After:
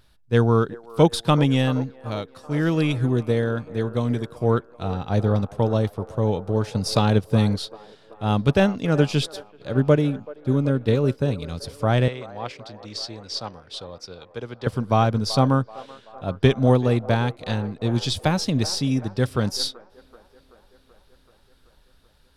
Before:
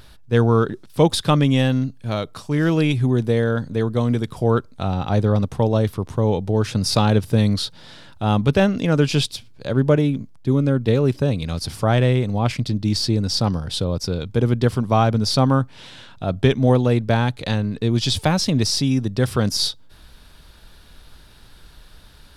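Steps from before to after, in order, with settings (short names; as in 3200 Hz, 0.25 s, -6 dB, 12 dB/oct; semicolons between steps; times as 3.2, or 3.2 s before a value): 12.08–14.67 three-band isolator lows -13 dB, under 460 Hz, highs -14 dB, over 7200 Hz; band-limited delay 0.382 s, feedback 70%, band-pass 800 Hz, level -11 dB; upward expander 1.5:1, over -37 dBFS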